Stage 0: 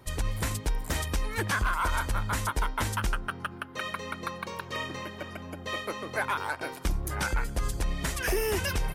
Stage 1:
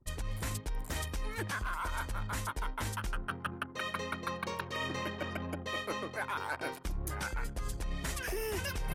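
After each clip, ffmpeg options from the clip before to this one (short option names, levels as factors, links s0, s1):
-af "anlmdn=0.0251,areverse,acompressor=threshold=0.0158:ratio=16,areverse,volume=1.5"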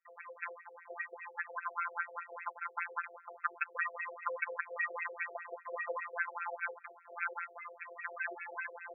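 -af "afftfilt=real='hypot(re,im)*cos(PI*b)':imag='0':win_size=1024:overlap=0.75,lowpass=f=3100:t=q:w=7.6,afftfilt=real='re*between(b*sr/1024,500*pow(1900/500,0.5+0.5*sin(2*PI*5*pts/sr))/1.41,500*pow(1900/500,0.5+0.5*sin(2*PI*5*pts/sr))*1.41)':imag='im*between(b*sr/1024,500*pow(1900/500,0.5+0.5*sin(2*PI*5*pts/sr))/1.41,500*pow(1900/500,0.5+0.5*sin(2*PI*5*pts/sr))*1.41)':win_size=1024:overlap=0.75,volume=1.88"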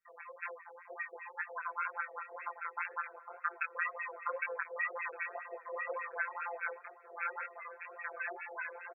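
-filter_complex "[0:a]flanger=delay=19:depth=6.5:speed=2,asplit=2[s0][s1];[s1]adelay=1516,volume=0.158,highshelf=f=4000:g=-34.1[s2];[s0][s2]amix=inputs=2:normalize=0,volume=1.41"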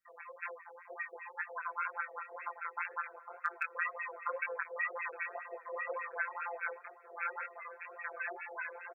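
-af "asoftclip=type=hard:threshold=0.0891"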